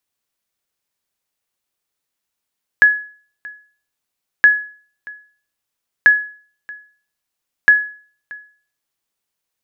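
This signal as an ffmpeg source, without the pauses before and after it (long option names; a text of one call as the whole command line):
ffmpeg -f lavfi -i "aevalsrc='0.794*(sin(2*PI*1690*mod(t,1.62))*exp(-6.91*mod(t,1.62)/0.44)+0.0668*sin(2*PI*1690*max(mod(t,1.62)-0.63,0))*exp(-6.91*max(mod(t,1.62)-0.63,0)/0.44))':duration=6.48:sample_rate=44100" out.wav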